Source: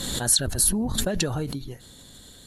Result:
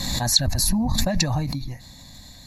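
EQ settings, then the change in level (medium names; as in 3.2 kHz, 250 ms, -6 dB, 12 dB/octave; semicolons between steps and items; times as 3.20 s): static phaser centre 2.1 kHz, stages 8; +7.0 dB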